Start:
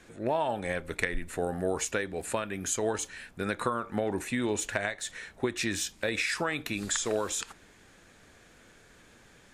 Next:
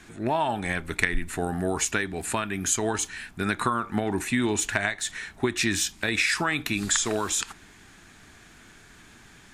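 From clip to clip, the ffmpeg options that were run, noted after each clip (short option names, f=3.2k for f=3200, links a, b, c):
-af "equalizer=f=520:t=o:w=0.39:g=-15,volume=6.5dB"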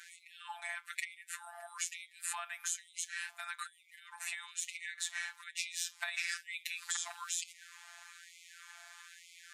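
-af "acompressor=threshold=-33dB:ratio=10,afftfilt=real='hypot(re,im)*cos(PI*b)':imag='0':win_size=1024:overlap=0.75,afftfilt=real='re*gte(b*sr/1024,610*pow(2000/610,0.5+0.5*sin(2*PI*1.1*pts/sr)))':imag='im*gte(b*sr/1024,610*pow(2000/610,0.5+0.5*sin(2*PI*1.1*pts/sr)))':win_size=1024:overlap=0.75,volume=2.5dB"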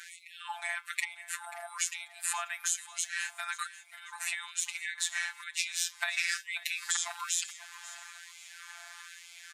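-af "aecho=1:1:538|1076|1614:0.141|0.0466|0.0154,volume=6dB"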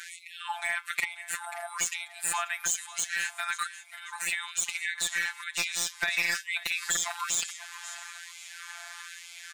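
-af "asoftclip=type=hard:threshold=-22dB,volume=5dB"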